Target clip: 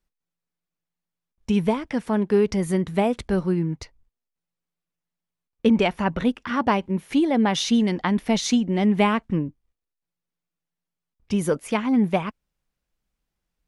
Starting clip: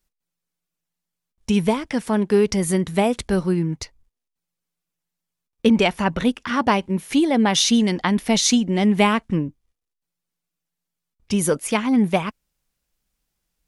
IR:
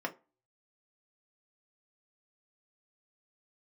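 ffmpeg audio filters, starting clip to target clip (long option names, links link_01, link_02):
-af "highshelf=frequency=4200:gain=-11,volume=-2dB"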